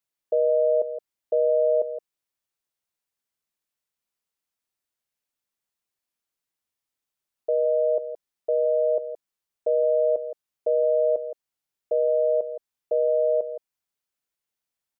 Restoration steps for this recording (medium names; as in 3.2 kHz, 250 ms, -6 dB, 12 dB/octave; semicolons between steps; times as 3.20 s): inverse comb 168 ms -11 dB